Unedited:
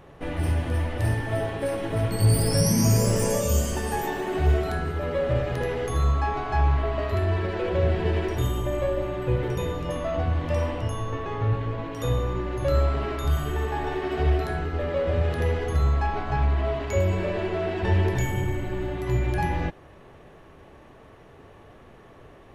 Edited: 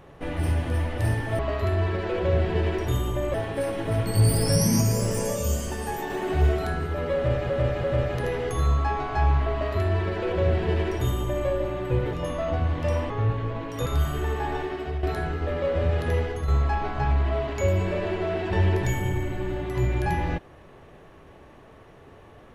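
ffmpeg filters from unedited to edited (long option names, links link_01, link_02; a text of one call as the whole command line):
ffmpeg -i in.wav -filter_complex "[0:a]asplit=12[link_01][link_02][link_03][link_04][link_05][link_06][link_07][link_08][link_09][link_10][link_11][link_12];[link_01]atrim=end=1.392[link_13];[link_02]atrim=start=6.888:end=8.842[link_14];[link_03]atrim=start=1.388:end=2.862[link_15];[link_04]atrim=start=2.858:end=4.152,asetpts=PTS-STARTPTS,volume=-3dB[link_16];[link_05]atrim=start=4.148:end=5.552[link_17];[link_06]atrim=start=5.208:end=5.552[link_18];[link_07]atrim=start=5.208:end=9.502[link_19];[link_08]atrim=start=9.788:end=10.762[link_20];[link_09]atrim=start=11.328:end=12.092[link_21];[link_10]atrim=start=13.178:end=14.35,asetpts=PTS-STARTPTS,afade=type=out:start_time=0.682:duration=0.49:silence=0.266073[link_22];[link_11]atrim=start=14.35:end=15.8,asetpts=PTS-STARTPTS,afade=type=in:duration=0.004:curve=hsin:silence=0.266073,afade=type=out:start_time=1.16:duration=0.29:silence=0.473151[link_23];[link_12]atrim=start=15.8,asetpts=PTS-STARTPTS,afade=type=in:duration=0.004:curve=hsin:silence=0.473151[link_24];[link_13][link_14]acrossfade=duration=0.004:curve1=hsin:curve2=hsin[link_25];[link_25][link_15]acrossfade=duration=0.004:curve1=hsin:curve2=hsin[link_26];[link_26][link_16]acrossfade=duration=0.004:curve1=hsin:curve2=hsin[link_27];[link_27][link_17]acrossfade=duration=0.004:curve1=hsin:curve2=hsin[link_28];[link_28][link_18]acrossfade=duration=0.004:curve1=hsin:curve2=hsin[link_29];[link_29][link_19]acrossfade=duration=0.004:curve1=hsin:curve2=hsin[link_30];[link_30][link_20]acrossfade=duration=0.004:curve1=hsin:curve2=hsin[link_31];[link_31][link_21]acrossfade=duration=0.004:curve1=hsin:curve2=hsin[link_32];[link_22][link_23][link_24]concat=n=3:v=0:a=1[link_33];[link_32][link_33]acrossfade=duration=0.004:curve1=hsin:curve2=hsin" out.wav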